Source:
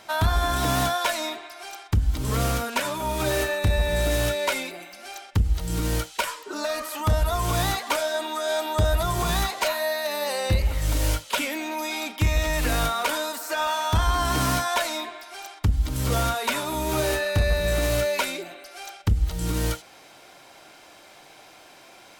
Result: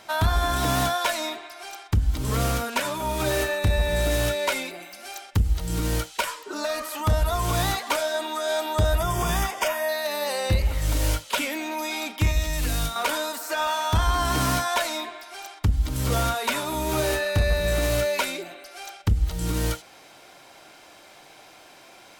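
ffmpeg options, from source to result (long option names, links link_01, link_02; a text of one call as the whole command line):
ffmpeg -i in.wav -filter_complex "[0:a]asettb=1/sr,asplit=3[link_01][link_02][link_03];[link_01]atrim=end=4.844[link_04];[link_02]atrim=start=4.84:end=5.54,asetpts=PTS-STARTPTS,afade=type=in:duration=0.004:curve=qsin,afade=type=out:start_time=0.696:duration=0.004:curve=qsin,highshelf=frequency=8600:gain=7[link_05];[link_03]atrim=start=5.536[link_06];[link_04][link_05]acrossfade=duration=0.004:curve1=hsin:curve2=qsin[link_07];[link_07][link_06]acrossfade=duration=0.004:curve1=qsin:curve2=hsin,asettb=1/sr,asplit=3[link_08][link_09][link_10];[link_08]atrim=end=8.984[link_11];[link_09]atrim=start=8.98:end=9.89,asetpts=PTS-STARTPTS,afade=type=in:duration=0.004:curve=qsin,afade=type=out:start_time=0.906:duration=0.004:curve=qsin,asuperstop=centerf=4100:order=4:qfactor=3.8[link_12];[link_10]atrim=start=9.886[link_13];[link_11][link_12]acrossfade=duration=0.004:curve1=hsin:curve2=qsin[link_14];[link_14][link_13]acrossfade=duration=0.004:curve1=qsin:curve2=hsin,asettb=1/sr,asplit=3[link_15][link_16][link_17];[link_15]atrim=end=12.314[link_18];[link_16]atrim=start=12.31:end=12.96,asetpts=PTS-STARTPTS,afade=type=in:duration=0.004:curve=qsin,afade=type=out:start_time=0.646:duration=0.004:curve=qsin,acrossover=split=250|3000[link_19][link_20][link_21];[link_20]acompressor=threshold=-36dB:ratio=3:attack=3.2:release=140:knee=2.83:detection=peak[link_22];[link_19][link_22][link_21]amix=inputs=3:normalize=0[link_23];[link_17]atrim=start=12.956[link_24];[link_18][link_23]acrossfade=duration=0.004:curve1=hsin:curve2=qsin[link_25];[link_25][link_24]acrossfade=duration=0.004:curve1=qsin:curve2=hsin" out.wav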